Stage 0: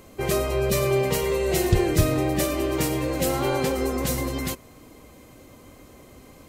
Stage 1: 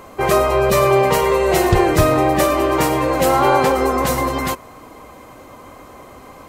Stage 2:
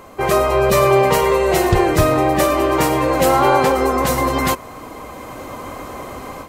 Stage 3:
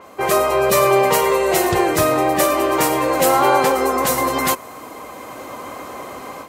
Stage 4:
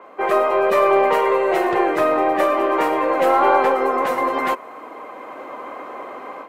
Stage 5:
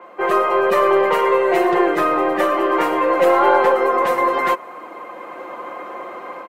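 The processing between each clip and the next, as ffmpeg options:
ffmpeg -i in.wav -af "equalizer=frequency=1000:width_type=o:width=1.8:gain=13.5,volume=3dB" out.wav
ffmpeg -i in.wav -af "dynaudnorm=framelen=320:gausssize=3:maxgain=10dB,volume=-1dB" out.wav
ffmpeg -i in.wav -af "highpass=frequency=280:poles=1,adynamicequalizer=threshold=0.0112:dfrequency=6300:dqfactor=0.7:tfrequency=6300:tqfactor=0.7:attack=5:release=100:ratio=0.375:range=2.5:mode=boostabove:tftype=highshelf" out.wav
ffmpeg -i in.wav -filter_complex "[0:a]acrossover=split=250 2700:gain=0.0794 1 0.0794[link_01][link_02][link_03];[link_01][link_02][link_03]amix=inputs=3:normalize=0,aeval=exprs='0.794*(cos(1*acos(clip(val(0)/0.794,-1,1)))-cos(1*PI/2))+0.01*(cos(6*acos(clip(val(0)/0.794,-1,1)))-cos(6*PI/2))':channel_layout=same" out.wav
ffmpeg -i in.wav -af "aecho=1:1:5.7:0.6" out.wav

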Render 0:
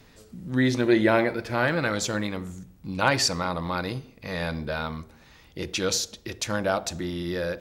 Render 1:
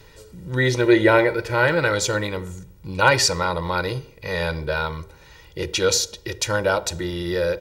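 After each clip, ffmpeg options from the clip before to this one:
ffmpeg -i in.wav -af "aecho=1:1:2.1:0.76,volume=3.5dB" out.wav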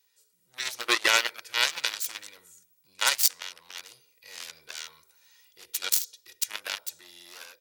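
ffmpeg -i in.wav -af "aeval=exprs='0.891*(cos(1*acos(clip(val(0)/0.891,-1,1)))-cos(1*PI/2))+0.158*(cos(7*acos(clip(val(0)/0.891,-1,1)))-cos(7*PI/2))':channel_layout=same,aderivative,dynaudnorm=framelen=390:gausssize=3:maxgain=9dB" out.wav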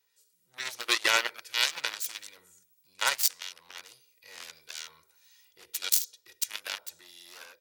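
ffmpeg -i in.wav -filter_complex "[0:a]acrossover=split=2300[link_01][link_02];[link_01]aeval=exprs='val(0)*(1-0.5/2+0.5/2*cos(2*PI*1.6*n/s))':channel_layout=same[link_03];[link_02]aeval=exprs='val(0)*(1-0.5/2-0.5/2*cos(2*PI*1.6*n/s))':channel_layout=same[link_04];[link_03][link_04]amix=inputs=2:normalize=0" out.wav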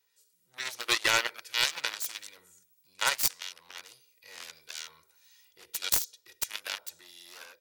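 ffmpeg -i in.wav -af "aeval=exprs='clip(val(0),-1,0.126)':channel_layout=same" out.wav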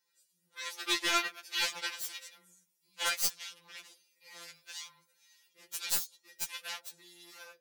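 ffmpeg -i in.wav -af "afftfilt=real='re*2.83*eq(mod(b,8),0)':imag='im*2.83*eq(mod(b,8),0)':win_size=2048:overlap=0.75,volume=-1.5dB" out.wav

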